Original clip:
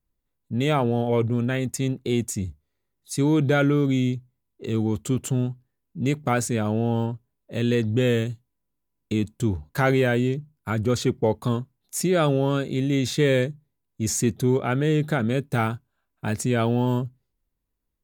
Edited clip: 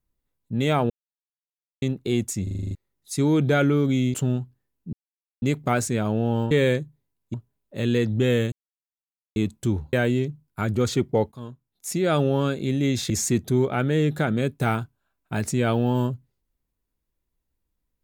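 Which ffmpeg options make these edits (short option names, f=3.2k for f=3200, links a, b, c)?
-filter_complex "[0:a]asplit=20[a][b][c][d][e][f][g][h][i][j][k][l][m][n][o][p][q][r][s][t];[a]atrim=end=0.9,asetpts=PTS-STARTPTS,afade=t=out:st=0.896:d=0.004:c=hsin[u];[b]atrim=start=0.9:end=1.82,asetpts=PTS-STARTPTS,volume=0[v];[c]atrim=start=1.82:end=2.472,asetpts=PTS-STARTPTS,afade=t=in:d=0.004:c=hsin[w];[d]atrim=start=2.428:end=2.472[x];[e]atrim=start=2.428:end=2.472[y];[f]atrim=start=2.428:end=2.472[z];[g]atrim=start=2.428:end=2.472[aa];[h]atrim=start=2.428:end=2.472[ab];[i]atrim=start=2.428:end=2.472[ac];[j]atrim=start=2.428:end=2.472[ad];[k]atrim=start=2.748:end=4.142[ae];[l]atrim=start=5.228:end=6.02,asetpts=PTS-STARTPTS,afade=t=out:st=0.788:d=0.004:c=hsin,apad=pad_dur=0.49[af];[m]atrim=start=6.02:end=7.112,asetpts=PTS-STARTPTS,afade=t=in:d=0.004:c=hsin[ag];[n]atrim=start=13.188:end=14.022[ah];[o]atrim=start=7.108:end=8.29,asetpts=PTS-STARTPTS,afade=t=out:st=1.178:d=0.004:c=hsin[ai];[p]atrim=start=8.29:end=9.13,asetpts=PTS-STARTPTS,volume=0[aj];[q]atrim=start=9.13:end=9.702,asetpts=PTS-STARTPTS,afade=t=in:d=0.004:c=hsin[ak];[r]atrim=start=10.018:end=11.41,asetpts=PTS-STARTPTS,afade=t=out:st=1.388:d=0.004:c=hsin:silence=0.112202[al];[s]atrim=start=11.41:end=13.192,asetpts=PTS-STARTPTS,afade=t=in:d=0.9:silence=0.112202[am];[t]atrim=start=14.018[an];[u][v][w]concat=n=3:v=0:a=1[ao];[ao][x]acrossfade=d=0.004:c1=hsin:c2=hsin[ap];[ap][y]acrossfade=d=0.004:c1=hsin:c2=hsin[aq];[aq][z]acrossfade=d=0.004:c1=hsin:c2=hsin[ar];[ar][aa]acrossfade=d=0.004:c1=hsin:c2=hsin[as];[as][ab]acrossfade=d=0.004:c1=hsin:c2=hsin[at];[at][ac]acrossfade=d=0.004:c1=hsin:c2=hsin[au];[au][ad]acrossfade=d=0.004:c1=hsin:c2=hsin[av];[av][ae]acrossfade=d=0.004:c1=hsin:c2=hsin[aw];[af][ag]concat=n=2:v=0:a=1[ax];[aw][ax]acrossfade=d=0.004:c1=hsin:c2=hsin[ay];[ay][ah]acrossfade=d=0.004:c1=hsin:c2=hsin[az];[ai][aj][ak]concat=n=3:v=0:a=1[ba];[az][ba]acrossfade=d=0.004:c1=hsin:c2=hsin[bb];[al][am]concat=n=2:v=0:a=1[bc];[bb][bc]acrossfade=d=0.004:c1=hsin:c2=hsin[bd];[bd][an]acrossfade=d=0.004:c1=hsin:c2=hsin"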